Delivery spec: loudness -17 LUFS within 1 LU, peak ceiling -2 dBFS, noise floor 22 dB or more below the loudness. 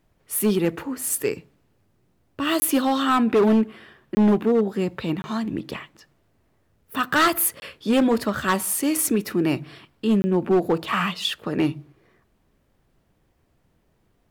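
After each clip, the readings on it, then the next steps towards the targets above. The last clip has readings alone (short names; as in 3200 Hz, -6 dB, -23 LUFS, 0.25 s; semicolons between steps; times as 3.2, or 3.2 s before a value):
clipped 1.3%; flat tops at -13.5 dBFS; dropouts 5; longest dropout 20 ms; loudness -22.5 LUFS; peak -13.5 dBFS; loudness target -17.0 LUFS
-> clip repair -13.5 dBFS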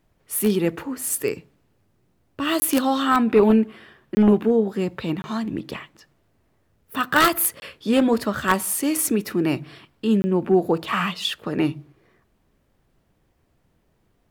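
clipped 0.0%; dropouts 5; longest dropout 20 ms
-> interpolate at 2.6/4.15/5.22/7.6/10.22, 20 ms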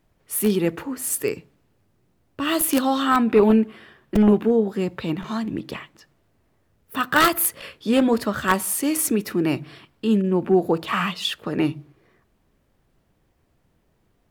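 dropouts 0; loudness -21.5 LUFS; peak -4.5 dBFS; loudness target -17.0 LUFS
-> gain +4.5 dB; limiter -2 dBFS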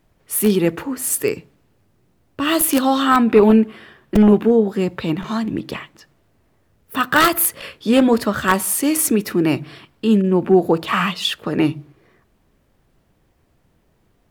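loudness -17.5 LUFS; peak -2.0 dBFS; noise floor -62 dBFS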